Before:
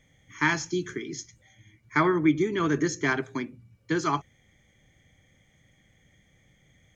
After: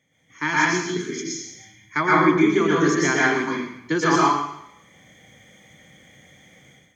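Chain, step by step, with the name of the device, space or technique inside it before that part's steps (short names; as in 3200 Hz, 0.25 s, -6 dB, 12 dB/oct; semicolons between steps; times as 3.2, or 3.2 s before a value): far laptop microphone (reverb RT60 0.75 s, pre-delay 0.109 s, DRR -5 dB; HPF 150 Hz 12 dB/oct; AGC gain up to 13 dB); 0.97–2.11 bell 1400 Hz -> 300 Hz -5.5 dB 2.3 oct; gain -4.5 dB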